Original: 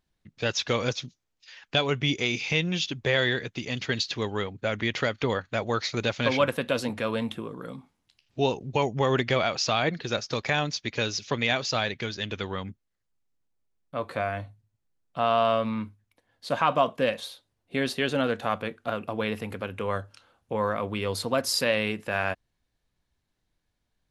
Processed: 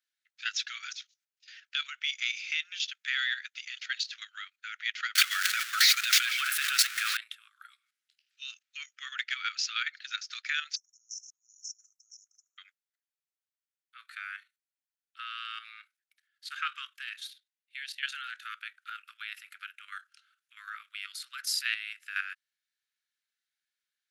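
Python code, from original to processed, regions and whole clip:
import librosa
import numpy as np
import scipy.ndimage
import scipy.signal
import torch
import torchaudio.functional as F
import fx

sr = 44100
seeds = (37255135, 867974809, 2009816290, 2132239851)

y = fx.chain(x, sr, fx.zero_step(step_db=-26.0),
    fx.echo_stepped(ms=312, hz=220.0, octaves=1.4, feedback_pct=70, wet_db=-6),
    fx.env_flatten(amount_pct=100), at=(5.15, 7.17))
y = fx.chain(y, sr, fx.brickwall_bandstop(low_hz=480.0, high_hz=5300.0),
    fx.over_compress(threshold_db=-36.0, ratio=-0.5), at=(10.76, 12.58))
y = fx.chain(y, sr, fx.cheby2_highpass(hz=540.0, order=4, stop_db=60),
    fx.high_shelf(hz=2900.0, db=-7.0), at=(17.3, 18.03))
y = scipy.signal.sosfilt(scipy.signal.butter(16, 1300.0, 'highpass', fs=sr, output='sos'), y)
y = fx.level_steps(y, sr, step_db=10)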